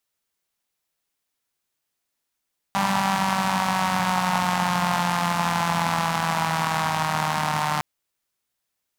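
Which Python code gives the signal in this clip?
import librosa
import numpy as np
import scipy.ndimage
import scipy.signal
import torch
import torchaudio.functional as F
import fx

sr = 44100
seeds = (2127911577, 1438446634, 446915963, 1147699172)

y = fx.engine_four_rev(sr, seeds[0], length_s=5.06, rpm=5900, resonances_hz=(180.0, 880.0), end_rpm=4500)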